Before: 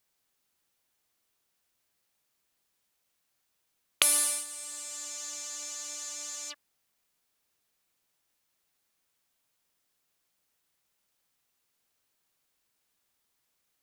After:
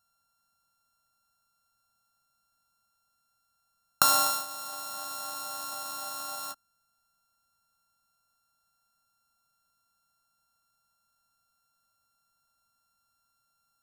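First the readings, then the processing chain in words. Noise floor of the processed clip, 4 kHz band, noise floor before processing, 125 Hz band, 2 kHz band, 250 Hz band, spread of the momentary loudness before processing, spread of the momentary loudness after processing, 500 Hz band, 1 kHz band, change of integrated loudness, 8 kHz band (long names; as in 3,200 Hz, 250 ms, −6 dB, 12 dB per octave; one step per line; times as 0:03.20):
−76 dBFS, +1.5 dB, −78 dBFS, can't be measured, 0.0 dB, +5.0 dB, 15 LU, 15 LU, +5.0 dB, +15.0 dB, +1.0 dB, −3.0 dB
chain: samples sorted by size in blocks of 32 samples
phaser with its sweep stopped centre 950 Hz, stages 4
level +4.5 dB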